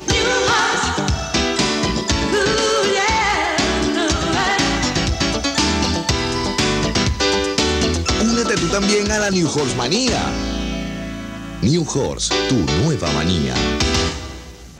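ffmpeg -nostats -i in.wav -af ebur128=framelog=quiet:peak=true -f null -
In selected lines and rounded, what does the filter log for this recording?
Integrated loudness:
  I:         -17.6 LUFS
  Threshold: -27.8 LUFS
Loudness range:
  LRA:         2.6 LU
  Threshold: -37.8 LUFS
  LRA low:   -19.5 LUFS
  LRA high:  -16.9 LUFS
True peak:
  Peak:       -3.4 dBFS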